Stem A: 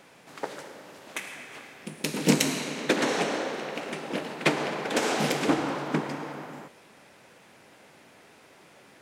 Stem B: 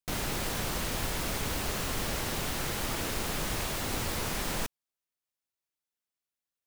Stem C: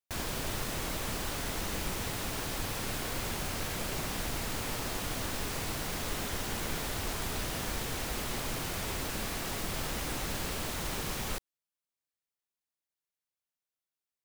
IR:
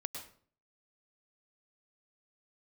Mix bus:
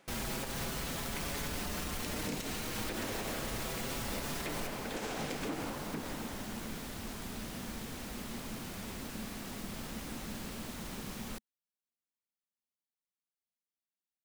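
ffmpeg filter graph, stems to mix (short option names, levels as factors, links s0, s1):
-filter_complex "[0:a]volume=0.299[s0];[1:a]asoftclip=type=hard:threshold=0.0266,asplit=2[s1][s2];[s2]adelay=5.8,afreqshift=0.31[s3];[s1][s3]amix=inputs=2:normalize=1,volume=1.06[s4];[2:a]equalizer=f=220:w=2.4:g=12,volume=0.355[s5];[s0][s4][s5]amix=inputs=3:normalize=0,alimiter=level_in=1.5:limit=0.0631:level=0:latency=1:release=110,volume=0.668"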